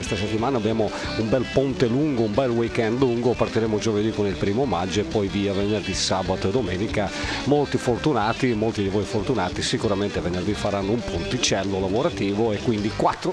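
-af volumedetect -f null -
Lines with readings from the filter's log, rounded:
mean_volume: -22.6 dB
max_volume: -5.5 dB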